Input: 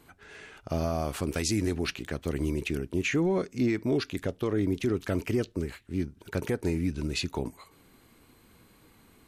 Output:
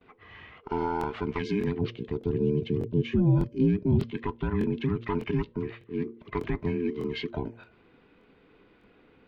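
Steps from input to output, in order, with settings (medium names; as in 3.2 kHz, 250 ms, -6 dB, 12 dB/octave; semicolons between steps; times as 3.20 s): every band turned upside down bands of 500 Hz; low-pass 3.2 kHz 24 dB/octave; de-hum 115.5 Hz, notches 5; gate with hold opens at -52 dBFS; 1.81–4.11 s: graphic EQ 125/500/1000/2000 Hz +7/+7/-11/-11 dB; crackling interface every 0.60 s, samples 1024, repeat, from 0.99 s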